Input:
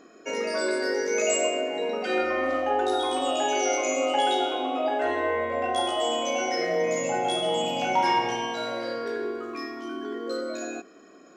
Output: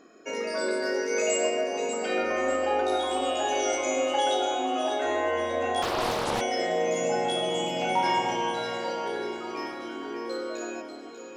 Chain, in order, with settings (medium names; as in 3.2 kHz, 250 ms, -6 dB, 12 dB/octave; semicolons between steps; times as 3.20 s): on a send: echo whose repeats swap between lows and highs 296 ms, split 1.4 kHz, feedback 74%, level -6 dB; 5.82–6.41 s: on the sum: loudspeaker Doppler distortion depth 0.77 ms; trim -2.5 dB